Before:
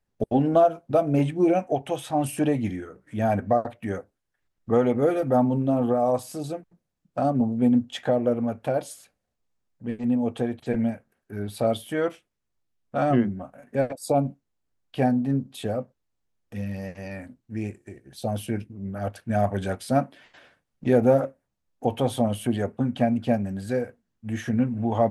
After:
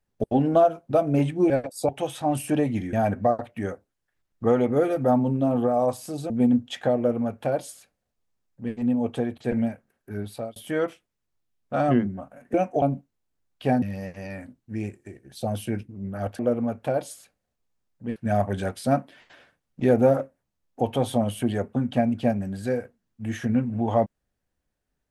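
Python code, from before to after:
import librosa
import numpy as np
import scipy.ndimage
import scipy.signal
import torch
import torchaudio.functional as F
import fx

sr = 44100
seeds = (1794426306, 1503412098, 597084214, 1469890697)

y = fx.edit(x, sr, fx.swap(start_s=1.5, length_s=0.28, other_s=13.76, other_length_s=0.39),
    fx.cut(start_s=2.82, length_s=0.37),
    fx.cut(start_s=6.56, length_s=0.96),
    fx.duplicate(start_s=8.19, length_s=1.77, to_s=19.2),
    fx.fade_out_span(start_s=11.4, length_s=0.38),
    fx.cut(start_s=15.15, length_s=1.48), tone=tone)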